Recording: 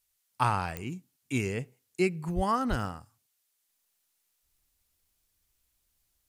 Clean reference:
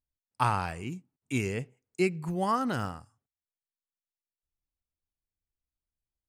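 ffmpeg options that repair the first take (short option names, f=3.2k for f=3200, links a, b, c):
-filter_complex "[0:a]adeclick=t=4,asplit=3[a][b][c];[a]afade=t=out:st=2.35:d=0.02[d];[b]highpass=f=140:w=0.5412,highpass=f=140:w=1.3066,afade=t=in:st=2.35:d=0.02,afade=t=out:st=2.47:d=0.02[e];[c]afade=t=in:st=2.47:d=0.02[f];[d][e][f]amix=inputs=3:normalize=0,asplit=3[g][h][i];[g]afade=t=out:st=2.69:d=0.02[j];[h]highpass=f=140:w=0.5412,highpass=f=140:w=1.3066,afade=t=in:st=2.69:d=0.02,afade=t=out:st=2.81:d=0.02[k];[i]afade=t=in:st=2.81:d=0.02[l];[j][k][l]amix=inputs=3:normalize=0,agate=range=-21dB:threshold=-69dB,asetnsamples=n=441:p=0,asendcmd='3.69 volume volume -12dB',volume=0dB"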